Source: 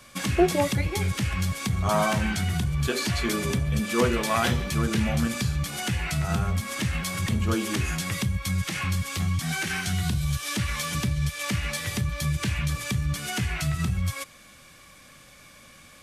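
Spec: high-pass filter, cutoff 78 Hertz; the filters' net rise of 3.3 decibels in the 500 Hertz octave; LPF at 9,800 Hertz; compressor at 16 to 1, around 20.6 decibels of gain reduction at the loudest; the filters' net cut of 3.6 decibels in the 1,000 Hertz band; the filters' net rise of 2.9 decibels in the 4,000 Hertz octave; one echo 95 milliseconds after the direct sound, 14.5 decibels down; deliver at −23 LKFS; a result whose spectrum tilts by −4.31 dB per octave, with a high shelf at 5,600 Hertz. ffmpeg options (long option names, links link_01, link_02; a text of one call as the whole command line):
ffmpeg -i in.wav -af "highpass=78,lowpass=9800,equalizer=frequency=500:width_type=o:gain=6.5,equalizer=frequency=1000:width_type=o:gain=-7.5,equalizer=frequency=4000:width_type=o:gain=6,highshelf=frequency=5600:gain=-5,acompressor=threshold=-34dB:ratio=16,aecho=1:1:95:0.188,volume=14.5dB" out.wav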